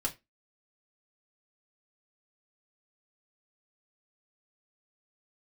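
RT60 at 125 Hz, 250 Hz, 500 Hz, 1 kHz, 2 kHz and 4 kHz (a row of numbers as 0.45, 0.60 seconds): 0.20, 0.25, 0.25, 0.20, 0.20, 0.20 seconds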